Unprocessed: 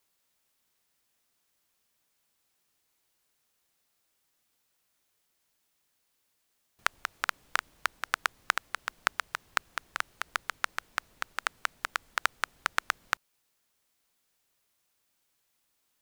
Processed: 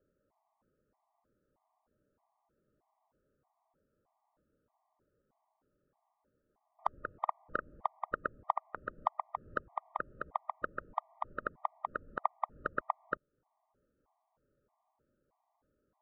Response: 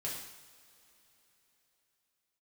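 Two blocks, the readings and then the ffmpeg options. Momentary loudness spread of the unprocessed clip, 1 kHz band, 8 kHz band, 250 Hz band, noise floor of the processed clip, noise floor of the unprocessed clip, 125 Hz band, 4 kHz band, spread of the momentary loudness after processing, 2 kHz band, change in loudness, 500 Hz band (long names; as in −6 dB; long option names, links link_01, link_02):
6 LU, −1.5 dB, below −35 dB, +5.5 dB, −82 dBFS, −76 dBFS, can't be measured, below −25 dB, 5 LU, −12.5 dB, −6.0 dB, +5.0 dB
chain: -filter_complex "[0:a]lowpass=frequency=1000:width=0.5412,lowpass=frequency=1000:width=1.3066,asplit=2[link_01][link_02];[link_02]acompressor=threshold=-46dB:ratio=8,volume=2dB[link_03];[link_01][link_03]amix=inputs=2:normalize=0,afftfilt=real='re*gt(sin(2*PI*1.6*pts/sr)*(1-2*mod(floor(b*sr/1024/620),2)),0)':imag='im*gt(sin(2*PI*1.6*pts/sr)*(1-2*mod(floor(b*sr/1024/620),2)),0)':win_size=1024:overlap=0.75,volume=5.5dB"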